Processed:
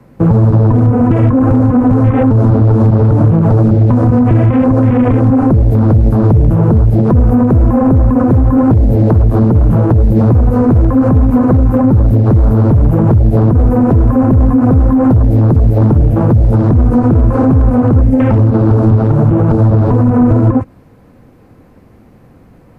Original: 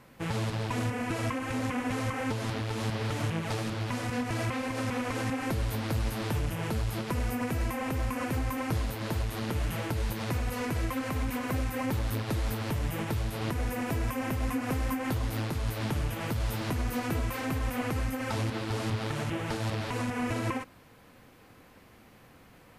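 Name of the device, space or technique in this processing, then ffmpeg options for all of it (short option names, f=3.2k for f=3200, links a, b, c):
mastering chain: -filter_complex "[0:a]afwtdn=0.0178,equalizer=f=3.2k:t=o:w=0.51:g=-4,acrossover=split=87|230|650[a][b][c][d];[a]acompressor=threshold=-35dB:ratio=4[e];[b]acompressor=threshold=-34dB:ratio=4[f];[c]acompressor=threshold=-39dB:ratio=4[g];[d]acompressor=threshold=-42dB:ratio=4[h];[e][f][g][h]amix=inputs=4:normalize=0,acompressor=threshold=-34dB:ratio=3,tiltshelf=f=870:g=8.5,asoftclip=type=hard:threshold=-22.5dB,alimiter=level_in=25.5dB:limit=-1dB:release=50:level=0:latency=1,asettb=1/sr,asplit=3[i][j][k];[i]atrim=end=16.514[l];[j]atrim=start=16.51:end=18.3,asetpts=PTS-STARTPTS,afade=t=in:d=0.004:c=qsin,afade=t=out:st=1.786:d=0.004:c=qsin,lowpass=f=11k:w=0.5412,lowpass=f=11k:w=1.3066[m];[k]atrim=start=18.296[n];[l][m]acrossfade=d=0.004:c1=hsin:c2=qsin[o];[o][n]acrossfade=d=0.004:c1=qsin:c2=hsin,volume=-1dB"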